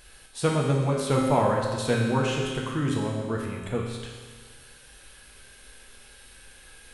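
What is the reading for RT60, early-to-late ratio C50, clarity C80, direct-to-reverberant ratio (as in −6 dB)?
1.6 s, 1.5 dB, 3.5 dB, −2.0 dB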